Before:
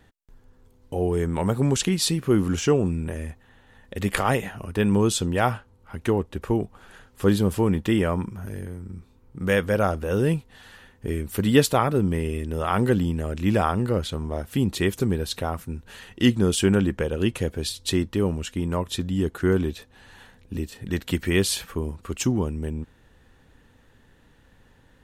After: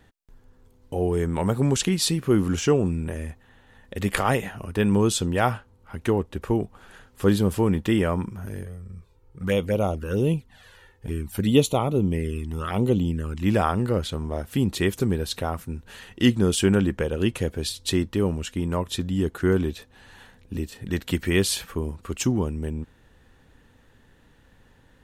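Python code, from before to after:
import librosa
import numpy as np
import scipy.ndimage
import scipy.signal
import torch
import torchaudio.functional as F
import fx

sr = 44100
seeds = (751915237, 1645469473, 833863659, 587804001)

y = fx.env_flanger(x, sr, rest_ms=2.5, full_db=-18.0, at=(8.63, 13.42))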